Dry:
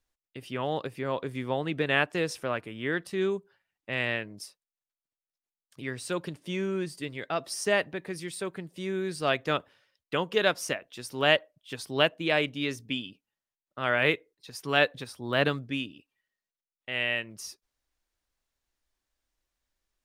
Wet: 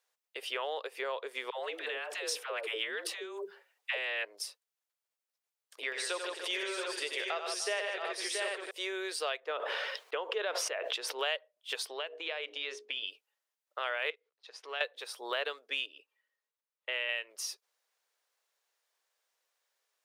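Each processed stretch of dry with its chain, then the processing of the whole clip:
1.5–4.25 negative-ratio compressor -36 dBFS + dispersion lows, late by 0.136 s, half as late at 450 Hz
5.83–8.71 LPF 9500 Hz + upward compressor, threshold -32 dBFS + tapped delay 90/154/297/676/740 ms -6.5/-7.5/-17/-8/-6.5 dB
9.4–11.19 LPF 1300 Hz 6 dB/oct + sustainer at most 23 dB/s
11.87–13.07 notches 60/120/180/240/300/360/420/480 Hz + compressor 8:1, threshold -35 dBFS + air absorption 94 m
14.1–14.81 G.711 law mismatch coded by A + LPF 4400 Hz + compressor 2:1, threshold -51 dBFS
15.86–17.09 Butterworth band-stop 720 Hz, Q 7.7 + high shelf 2100 Hz -7 dB
whole clip: elliptic high-pass 440 Hz, stop band 70 dB; compressor 4:1, threshold -40 dBFS; dynamic EQ 3300 Hz, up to +5 dB, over -56 dBFS, Q 1.4; gain +5 dB

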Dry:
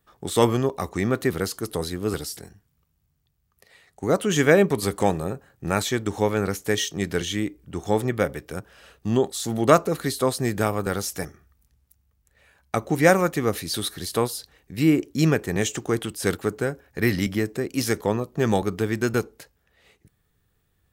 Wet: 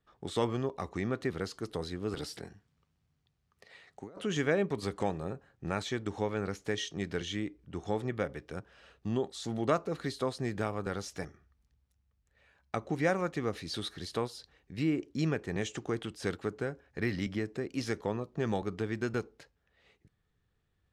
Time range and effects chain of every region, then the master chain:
2.15–4.18 HPF 130 Hz 6 dB/oct + dynamic EQ 6300 Hz, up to -6 dB, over -48 dBFS, Q 1.3 + negative-ratio compressor -35 dBFS
whole clip: LPF 5200 Hz 12 dB/oct; compressor 1.5:1, threshold -25 dBFS; gain -7.5 dB

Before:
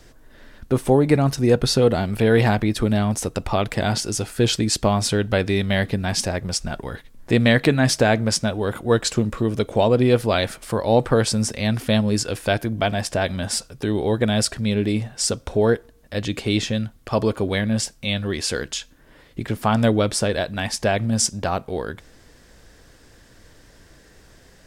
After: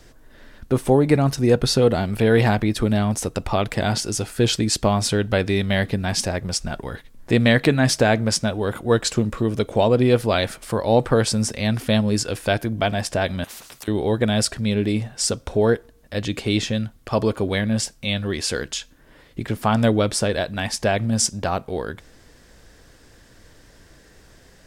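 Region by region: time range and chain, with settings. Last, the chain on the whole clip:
13.44–13.88 compressor 5:1, threshold -25 dBFS + spectral compressor 10:1
whole clip: dry

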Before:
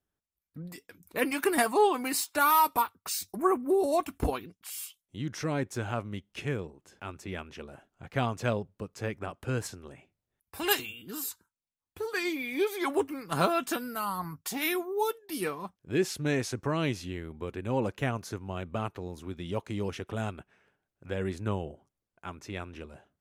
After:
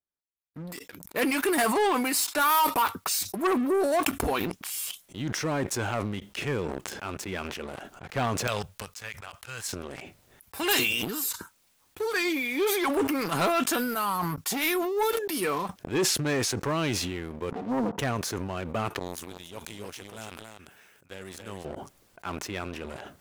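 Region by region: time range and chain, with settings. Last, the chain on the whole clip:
8.47–9.73 passive tone stack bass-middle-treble 10-0-10 + wrapped overs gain 24 dB
17.51–17.99 minimum comb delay 4.2 ms + Chebyshev band-pass 130–1000 Hz, order 3 + low shelf 290 Hz +8.5 dB
18.99–21.65 pre-emphasis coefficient 0.8 + echo 0.278 s -6 dB
whole clip: sample leveller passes 3; low shelf 210 Hz -7 dB; sustainer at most 27 dB/s; gain -5.5 dB

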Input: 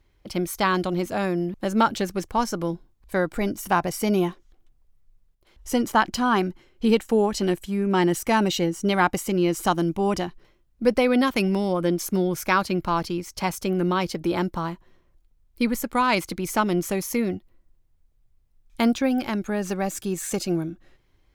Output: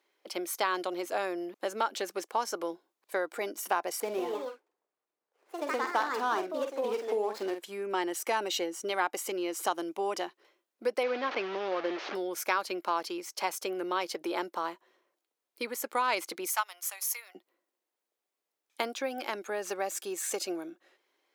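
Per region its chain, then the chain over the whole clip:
4–7.63 median filter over 15 samples + echoes that change speed 0.155 s, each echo +3 st, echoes 2, each echo -6 dB + doubler 47 ms -8.5 dB
11.03–12.15 delta modulation 32 kbps, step -22.5 dBFS + LPF 2500 Hz
16.46–17.35 inverse Chebyshev high-pass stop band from 250 Hz, stop band 60 dB + high shelf 7400 Hz +10.5 dB + upward expander, over -39 dBFS
whole clip: compressor 4:1, threshold -22 dBFS; HPF 380 Hz 24 dB/oct; gain -2.5 dB

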